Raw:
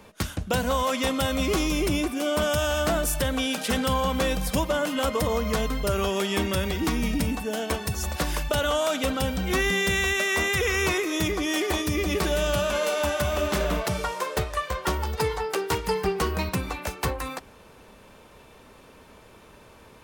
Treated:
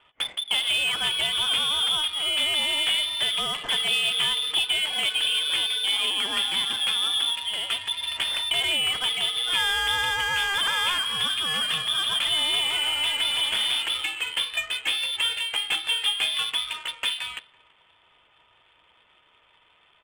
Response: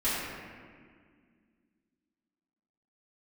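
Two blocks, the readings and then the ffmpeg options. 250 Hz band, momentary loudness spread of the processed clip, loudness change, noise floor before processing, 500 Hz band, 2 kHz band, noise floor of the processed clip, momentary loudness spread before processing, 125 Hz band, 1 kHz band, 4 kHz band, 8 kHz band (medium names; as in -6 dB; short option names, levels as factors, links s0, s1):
-20.5 dB, 5 LU, +3.0 dB, -51 dBFS, -17.0 dB, +1.5 dB, -61 dBFS, 6 LU, -20.0 dB, -4.5 dB, +12.0 dB, -1.0 dB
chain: -af "aecho=1:1:333:0.0891,lowpass=f=3100:t=q:w=0.5098,lowpass=f=3100:t=q:w=0.6013,lowpass=f=3100:t=q:w=0.9,lowpass=f=3100:t=q:w=2.563,afreqshift=-3600,adynamicsmooth=sensitivity=7:basefreq=1300"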